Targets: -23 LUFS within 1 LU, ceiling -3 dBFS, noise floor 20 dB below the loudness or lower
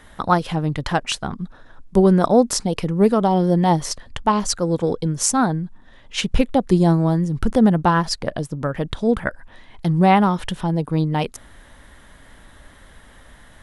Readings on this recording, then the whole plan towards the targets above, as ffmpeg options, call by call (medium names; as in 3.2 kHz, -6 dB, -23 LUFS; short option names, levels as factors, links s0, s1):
loudness -19.5 LUFS; peak level -1.5 dBFS; loudness target -23.0 LUFS
-> -af "volume=0.668"